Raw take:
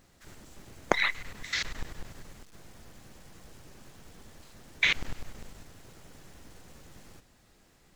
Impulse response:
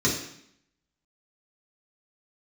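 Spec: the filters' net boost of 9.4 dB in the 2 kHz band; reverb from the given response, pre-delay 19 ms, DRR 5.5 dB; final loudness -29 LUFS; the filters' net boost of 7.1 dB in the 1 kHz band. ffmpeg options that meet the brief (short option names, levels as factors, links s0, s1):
-filter_complex "[0:a]equalizer=f=1000:t=o:g=6.5,equalizer=f=2000:t=o:g=9,asplit=2[s0][s1];[1:a]atrim=start_sample=2205,adelay=19[s2];[s1][s2]afir=irnorm=-1:irlink=0,volume=0.119[s3];[s0][s3]amix=inputs=2:normalize=0,volume=0.376"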